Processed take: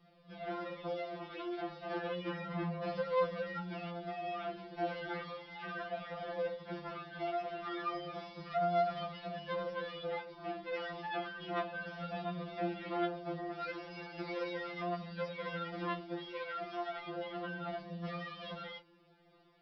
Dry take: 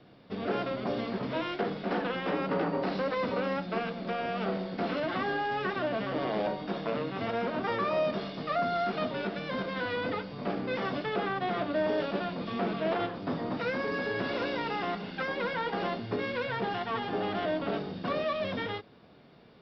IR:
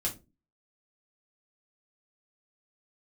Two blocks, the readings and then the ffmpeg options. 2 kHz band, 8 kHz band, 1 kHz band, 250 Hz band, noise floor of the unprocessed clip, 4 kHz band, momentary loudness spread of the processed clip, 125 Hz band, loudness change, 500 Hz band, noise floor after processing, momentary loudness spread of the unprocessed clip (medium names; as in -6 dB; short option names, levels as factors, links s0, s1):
-8.5 dB, no reading, -6.5 dB, -9.5 dB, -56 dBFS, -8.0 dB, 8 LU, -6.5 dB, -7.5 dB, -7.5 dB, -64 dBFS, 4 LU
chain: -af "flanger=delay=1.5:depth=1.4:regen=-45:speed=0.33:shape=triangular,afftfilt=real='re*2.83*eq(mod(b,8),0)':imag='im*2.83*eq(mod(b,8),0)':win_size=2048:overlap=0.75,volume=0.841"